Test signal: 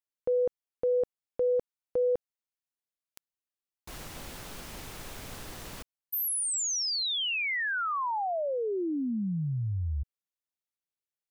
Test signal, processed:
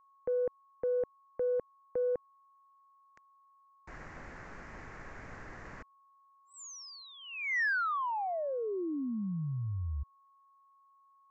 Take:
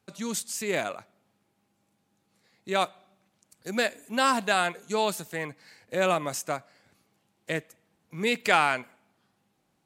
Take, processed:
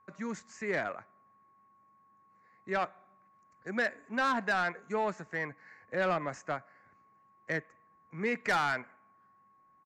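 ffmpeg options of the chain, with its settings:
-filter_complex "[0:a]highshelf=f=2500:t=q:w=3:g=-10.5,aresample=16000,aresample=44100,acrossover=split=350[s0][s1];[s1]asoftclip=type=tanh:threshold=0.106[s2];[s0][s2]amix=inputs=2:normalize=0,aeval=exprs='val(0)+0.00126*sin(2*PI*1100*n/s)':c=same,volume=0.596"

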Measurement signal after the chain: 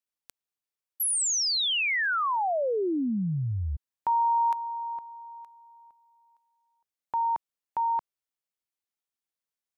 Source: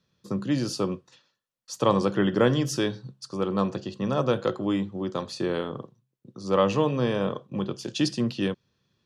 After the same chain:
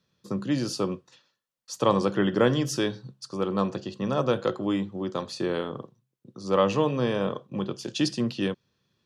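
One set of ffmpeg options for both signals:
-af "lowshelf=f=120:g=-4"

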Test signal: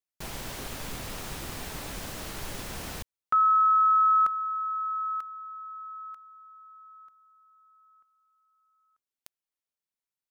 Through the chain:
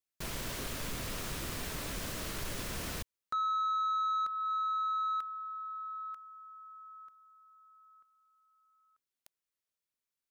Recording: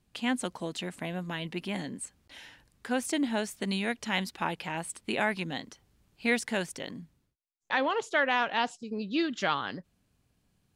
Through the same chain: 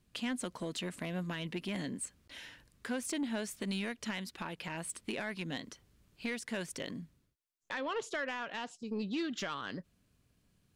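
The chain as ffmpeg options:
-af "equalizer=f=810:w=5:g=-7.5,acompressor=threshold=0.0398:ratio=5:attack=0.72:release=364:knee=1:detection=rms,asoftclip=type=tanh:threshold=0.0398"

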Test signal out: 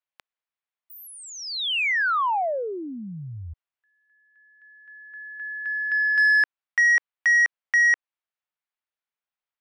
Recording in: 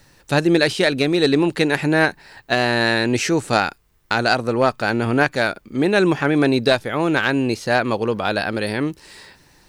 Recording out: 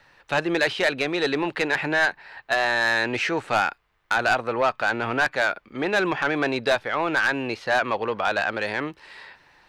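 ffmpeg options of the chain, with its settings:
-filter_complex "[0:a]acrossover=split=580 3500:gain=0.2 1 0.0794[s0][s1][s2];[s0][s1][s2]amix=inputs=3:normalize=0,asoftclip=type=tanh:threshold=0.158,volume=1.33"

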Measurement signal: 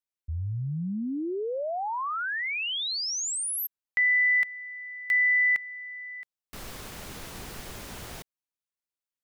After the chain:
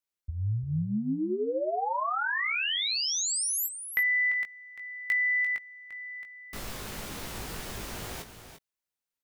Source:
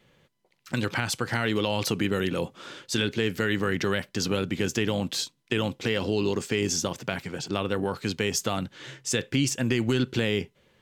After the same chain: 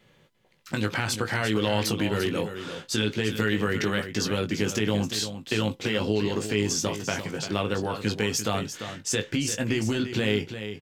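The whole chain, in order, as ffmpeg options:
-filter_complex "[0:a]acompressor=threshold=0.0251:ratio=4:attack=58:release=30:knee=6:detection=peak,asplit=2[s0][s1];[s1]adelay=19,volume=0.501[s2];[s0][s2]amix=inputs=2:normalize=0,aecho=1:1:345:0.316,volume=1.12"

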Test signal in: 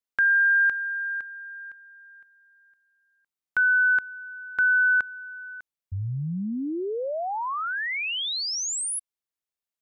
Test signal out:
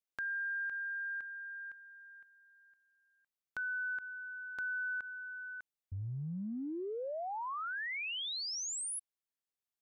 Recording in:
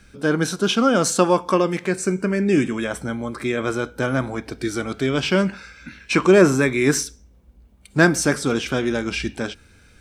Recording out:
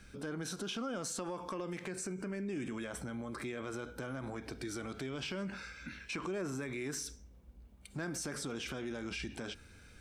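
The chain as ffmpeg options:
-af "acompressor=threshold=0.0251:ratio=5:attack=1.5:release=42:knee=6:detection=rms,volume=0.531"

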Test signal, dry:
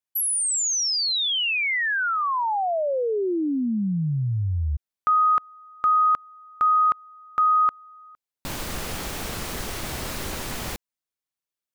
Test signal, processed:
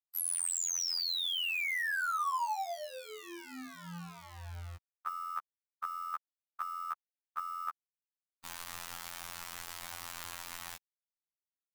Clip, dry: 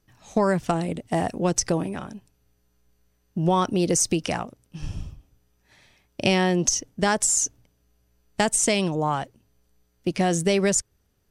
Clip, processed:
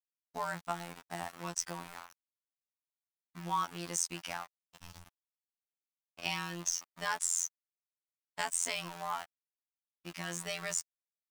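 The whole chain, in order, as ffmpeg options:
-af "aeval=exprs='val(0)*gte(abs(val(0)),0.0316)':c=same,lowshelf=f=650:t=q:w=1.5:g=-11,afftfilt=real='hypot(re,im)*cos(PI*b)':imag='0':win_size=2048:overlap=0.75,volume=0.422"

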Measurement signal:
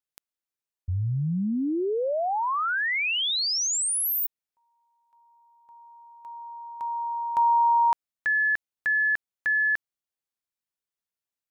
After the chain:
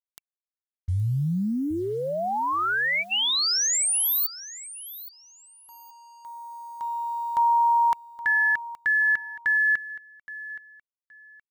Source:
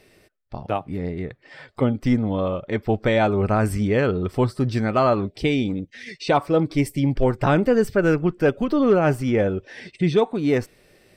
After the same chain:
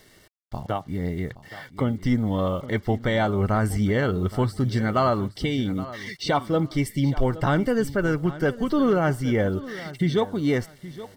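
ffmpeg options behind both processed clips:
-filter_complex "[0:a]acrusher=bits=8:mix=0:aa=0.5,equalizer=f=460:w=0.76:g=-5,alimiter=limit=0.188:level=0:latency=1:release=377,asuperstop=centerf=2500:order=12:qfactor=6.5,asplit=2[s0][s1];[s1]aecho=0:1:821|1642:0.158|0.0365[s2];[s0][s2]amix=inputs=2:normalize=0,volume=1.33"

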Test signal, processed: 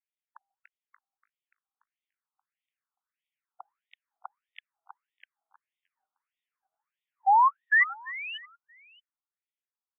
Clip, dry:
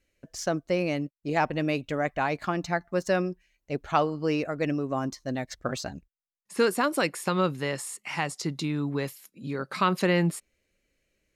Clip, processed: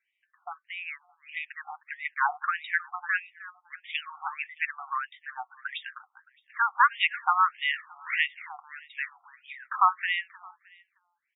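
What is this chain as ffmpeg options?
-af "dynaudnorm=f=230:g=17:m=3.16,aecho=1:1:309|618|927:0.141|0.0438|0.0136,afftfilt=real='re*between(b*sr/1024,980*pow(2700/980,0.5+0.5*sin(2*PI*1.6*pts/sr))/1.41,980*pow(2700/980,0.5+0.5*sin(2*PI*1.6*pts/sr))*1.41)':imag='im*between(b*sr/1024,980*pow(2700/980,0.5+0.5*sin(2*PI*1.6*pts/sr))/1.41,980*pow(2700/980,0.5+0.5*sin(2*PI*1.6*pts/sr))*1.41)':win_size=1024:overlap=0.75"

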